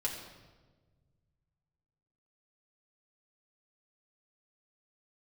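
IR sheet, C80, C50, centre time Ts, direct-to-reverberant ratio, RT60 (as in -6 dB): 6.5 dB, 5.5 dB, 38 ms, -3.5 dB, 1.4 s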